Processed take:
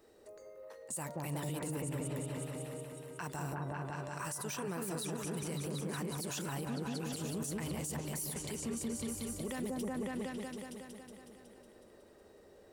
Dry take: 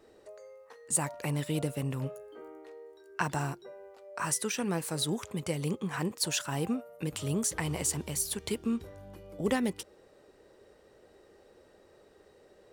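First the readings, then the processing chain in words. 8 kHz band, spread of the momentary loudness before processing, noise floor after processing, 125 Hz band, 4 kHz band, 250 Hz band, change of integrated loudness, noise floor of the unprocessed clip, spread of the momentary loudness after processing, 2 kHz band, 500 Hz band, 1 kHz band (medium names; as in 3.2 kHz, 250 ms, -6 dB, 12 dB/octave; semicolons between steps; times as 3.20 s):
-7.5 dB, 19 LU, -60 dBFS, -4.5 dB, -8.5 dB, -5.0 dB, -7.0 dB, -61 dBFS, 14 LU, -7.0 dB, -4.5 dB, -5.5 dB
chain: treble shelf 8.9 kHz +11.5 dB; on a send: delay with an opening low-pass 184 ms, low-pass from 750 Hz, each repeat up 1 oct, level 0 dB; on the sum: peak limiter -26 dBFS, peak gain reduction 17 dB; trim -4.5 dB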